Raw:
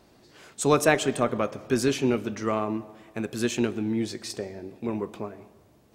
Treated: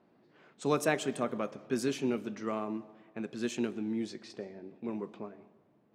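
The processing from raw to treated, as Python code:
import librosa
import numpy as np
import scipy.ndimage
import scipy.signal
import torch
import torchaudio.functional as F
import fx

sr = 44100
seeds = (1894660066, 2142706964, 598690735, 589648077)

y = fx.env_lowpass(x, sr, base_hz=2100.0, full_db=-21.0)
y = fx.low_shelf_res(y, sr, hz=110.0, db=-14.0, q=1.5)
y = F.gain(torch.from_numpy(y), -9.0).numpy()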